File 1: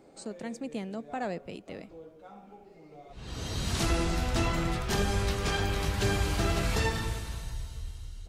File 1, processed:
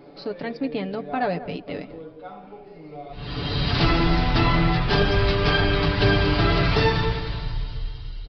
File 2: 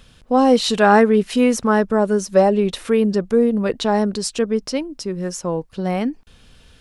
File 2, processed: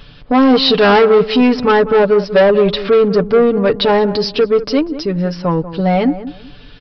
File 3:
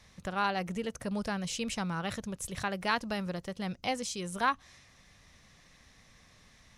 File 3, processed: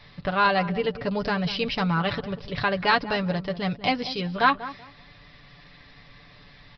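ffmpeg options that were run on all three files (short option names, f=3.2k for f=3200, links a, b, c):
-filter_complex "[0:a]aecho=1:1:6.9:0.64,aresample=11025,asoftclip=type=tanh:threshold=-14.5dB,aresample=44100,asplit=2[a][b];[b]adelay=191,lowpass=f=1.1k:p=1,volume=-12.5dB,asplit=2[c][d];[d]adelay=191,lowpass=f=1.1k:p=1,volume=0.26,asplit=2[e][f];[f]adelay=191,lowpass=f=1.1k:p=1,volume=0.26[g];[a][c][e][g]amix=inputs=4:normalize=0,volume=8.5dB"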